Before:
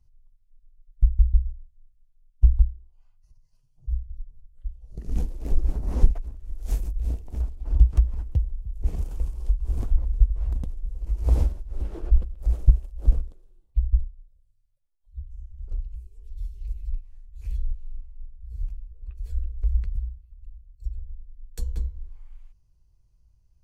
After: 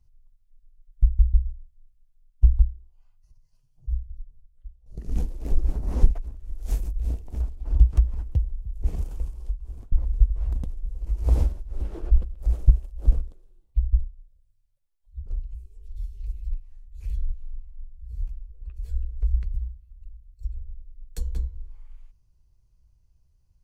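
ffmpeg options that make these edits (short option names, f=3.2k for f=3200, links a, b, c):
-filter_complex "[0:a]asplit=4[a][b][c][d];[a]atrim=end=4.86,asetpts=PTS-STARTPTS,afade=t=out:st=3.97:d=0.89:silence=0.199526[e];[b]atrim=start=4.86:end=9.92,asetpts=PTS-STARTPTS,afade=t=in:d=0.004:c=hsin:silence=0.199526,afade=t=out:st=4.12:d=0.94:silence=0.0749894[f];[c]atrim=start=9.92:end=15.262,asetpts=PTS-STARTPTS,afade=t=in:d=0.004:c=hsin:silence=0.0749894[g];[d]atrim=start=15.668[h];[e][f][g]concat=n=3:v=0:a=1[i];[i][h]acrossfade=d=0.004:c1=hsin:c2=hsin"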